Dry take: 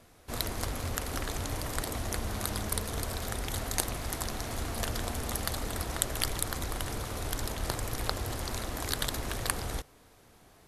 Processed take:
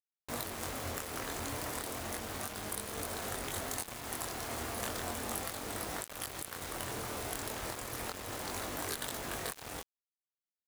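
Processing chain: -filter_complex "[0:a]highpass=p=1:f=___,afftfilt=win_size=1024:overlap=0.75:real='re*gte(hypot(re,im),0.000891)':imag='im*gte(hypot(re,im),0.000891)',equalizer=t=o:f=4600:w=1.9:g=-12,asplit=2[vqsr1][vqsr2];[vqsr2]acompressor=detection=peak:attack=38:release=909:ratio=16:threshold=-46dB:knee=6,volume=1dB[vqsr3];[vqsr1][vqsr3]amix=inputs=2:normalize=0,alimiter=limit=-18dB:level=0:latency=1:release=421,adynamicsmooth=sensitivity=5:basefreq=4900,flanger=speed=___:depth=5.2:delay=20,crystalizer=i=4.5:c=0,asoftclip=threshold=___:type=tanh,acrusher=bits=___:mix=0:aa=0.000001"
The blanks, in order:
240, 0.34, -25dB, 6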